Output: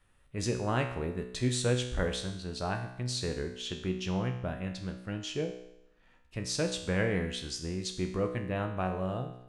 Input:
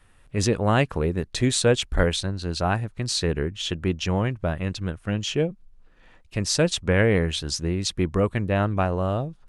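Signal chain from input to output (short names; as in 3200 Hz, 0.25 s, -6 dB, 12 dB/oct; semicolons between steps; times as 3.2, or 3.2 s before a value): resonator 62 Hz, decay 0.83 s, harmonics all, mix 80%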